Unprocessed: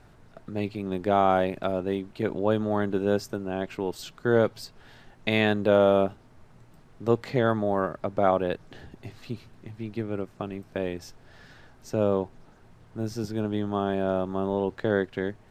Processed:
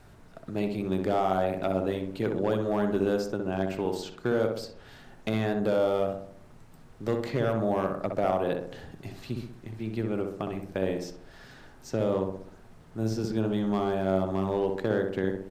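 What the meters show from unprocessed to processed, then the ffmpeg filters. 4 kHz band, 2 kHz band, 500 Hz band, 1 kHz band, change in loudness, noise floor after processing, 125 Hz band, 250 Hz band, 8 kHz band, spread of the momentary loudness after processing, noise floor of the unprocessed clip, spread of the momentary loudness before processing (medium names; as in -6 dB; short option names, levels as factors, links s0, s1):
-4.0 dB, -5.0 dB, -2.0 dB, -3.5 dB, -2.5 dB, -52 dBFS, -0.5 dB, -1.0 dB, no reading, 12 LU, -55 dBFS, 16 LU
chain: -filter_complex "[0:a]highshelf=f=6700:g=7,acrossover=split=1300|7000[s0][s1][s2];[s0]acompressor=threshold=0.0708:ratio=4[s3];[s1]acompressor=threshold=0.00891:ratio=4[s4];[s2]acompressor=threshold=0.00112:ratio=4[s5];[s3][s4][s5]amix=inputs=3:normalize=0,asoftclip=type=hard:threshold=0.119,asplit=2[s6][s7];[s7]adelay=63,lowpass=f=1500:p=1,volume=0.668,asplit=2[s8][s9];[s9]adelay=63,lowpass=f=1500:p=1,volume=0.54,asplit=2[s10][s11];[s11]adelay=63,lowpass=f=1500:p=1,volume=0.54,asplit=2[s12][s13];[s13]adelay=63,lowpass=f=1500:p=1,volume=0.54,asplit=2[s14][s15];[s15]adelay=63,lowpass=f=1500:p=1,volume=0.54,asplit=2[s16][s17];[s17]adelay=63,lowpass=f=1500:p=1,volume=0.54,asplit=2[s18][s19];[s19]adelay=63,lowpass=f=1500:p=1,volume=0.54[s20];[s8][s10][s12][s14][s16][s18][s20]amix=inputs=7:normalize=0[s21];[s6][s21]amix=inputs=2:normalize=0"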